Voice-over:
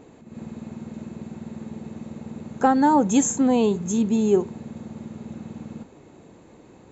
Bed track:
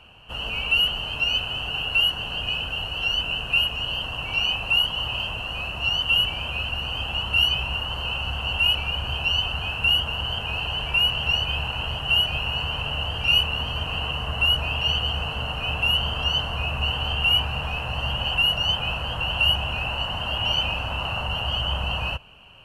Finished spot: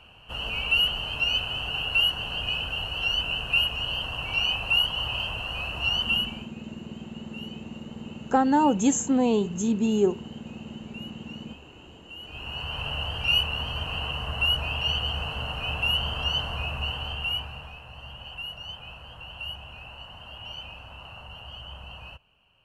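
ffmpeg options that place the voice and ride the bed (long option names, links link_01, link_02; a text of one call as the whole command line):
ffmpeg -i stem1.wav -i stem2.wav -filter_complex "[0:a]adelay=5700,volume=-3dB[link_01];[1:a]volume=17.5dB,afade=type=out:start_time=5.99:duration=0.51:silence=0.0891251,afade=type=in:start_time=12.2:duration=0.67:silence=0.105925,afade=type=out:start_time=16.5:duration=1.29:silence=0.237137[link_02];[link_01][link_02]amix=inputs=2:normalize=0" out.wav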